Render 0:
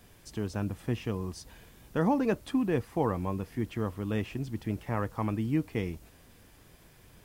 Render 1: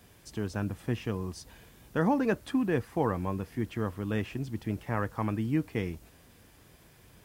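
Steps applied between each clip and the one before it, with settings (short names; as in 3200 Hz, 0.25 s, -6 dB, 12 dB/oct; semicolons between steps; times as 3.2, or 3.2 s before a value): HPF 42 Hz; dynamic EQ 1600 Hz, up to +5 dB, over -53 dBFS, Q 3.2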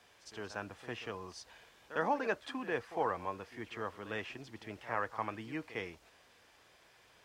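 three-band isolator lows -18 dB, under 470 Hz, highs -16 dB, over 6900 Hz; pre-echo 55 ms -14 dB; gain -1 dB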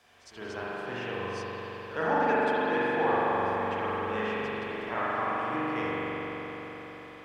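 reverb RT60 4.8 s, pre-delay 42 ms, DRR -9 dB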